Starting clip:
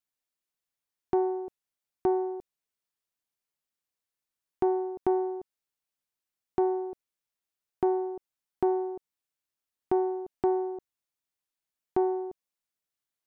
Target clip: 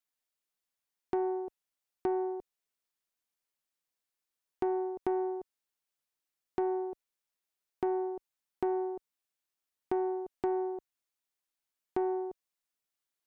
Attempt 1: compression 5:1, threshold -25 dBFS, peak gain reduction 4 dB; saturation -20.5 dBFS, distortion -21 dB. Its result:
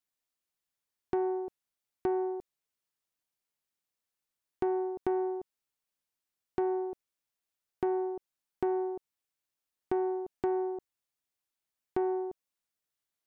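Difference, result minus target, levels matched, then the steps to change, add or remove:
125 Hz band +3.0 dB
add after compression: peaking EQ 94 Hz -5.5 dB 2.6 oct

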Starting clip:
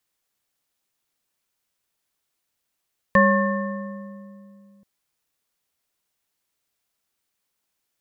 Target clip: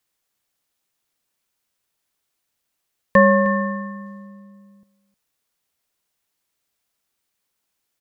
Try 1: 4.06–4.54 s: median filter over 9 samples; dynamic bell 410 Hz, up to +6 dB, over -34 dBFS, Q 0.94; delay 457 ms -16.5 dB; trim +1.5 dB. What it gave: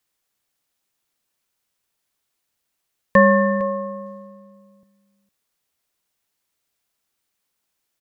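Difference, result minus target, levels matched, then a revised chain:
echo 148 ms late
4.06–4.54 s: median filter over 9 samples; dynamic bell 410 Hz, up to +6 dB, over -34 dBFS, Q 0.94; delay 309 ms -16.5 dB; trim +1.5 dB

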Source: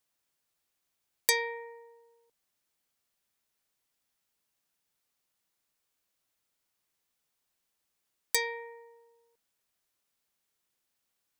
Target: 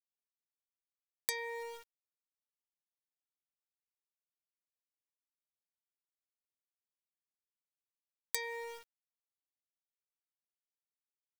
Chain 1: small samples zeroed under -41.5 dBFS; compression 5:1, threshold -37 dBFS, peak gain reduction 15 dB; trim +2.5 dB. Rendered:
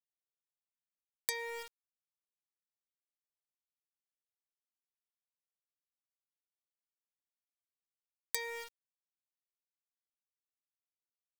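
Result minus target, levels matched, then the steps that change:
small samples zeroed: distortion +7 dB
change: small samples zeroed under -48.5 dBFS

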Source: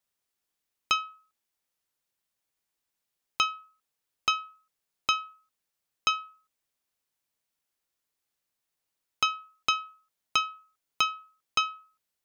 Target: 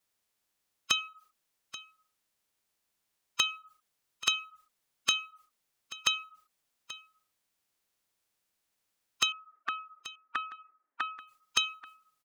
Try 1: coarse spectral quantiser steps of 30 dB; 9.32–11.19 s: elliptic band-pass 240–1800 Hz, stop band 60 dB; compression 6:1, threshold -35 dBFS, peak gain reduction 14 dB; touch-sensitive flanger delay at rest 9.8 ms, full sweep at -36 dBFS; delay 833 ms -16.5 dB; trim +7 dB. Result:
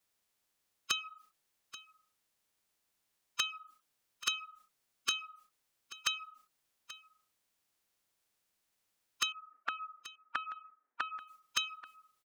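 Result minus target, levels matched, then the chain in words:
compression: peak gain reduction +6 dB
coarse spectral quantiser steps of 30 dB; 9.32–11.19 s: elliptic band-pass 240–1800 Hz, stop band 60 dB; compression 6:1, threshold -27.5 dBFS, peak gain reduction 7.5 dB; touch-sensitive flanger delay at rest 9.8 ms, full sweep at -36 dBFS; delay 833 ms -16.5 dB; trim +7 dB

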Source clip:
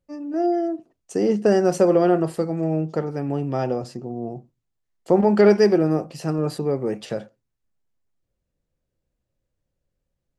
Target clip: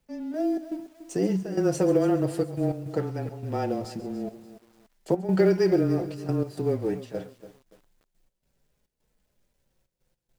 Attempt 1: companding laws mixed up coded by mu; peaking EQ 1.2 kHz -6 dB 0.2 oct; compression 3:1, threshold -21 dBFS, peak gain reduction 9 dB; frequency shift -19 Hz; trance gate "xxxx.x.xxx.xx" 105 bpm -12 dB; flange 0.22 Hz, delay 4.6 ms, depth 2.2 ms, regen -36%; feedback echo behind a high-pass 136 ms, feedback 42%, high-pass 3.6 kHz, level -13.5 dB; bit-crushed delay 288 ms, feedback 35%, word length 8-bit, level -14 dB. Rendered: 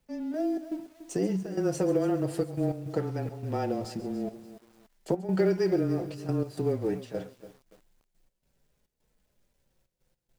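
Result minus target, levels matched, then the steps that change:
compression: peak gain reduction +4.5 dB
change: compression 3:1, threshold -14.5 dBFS, peak gain reduction 4.5 dB

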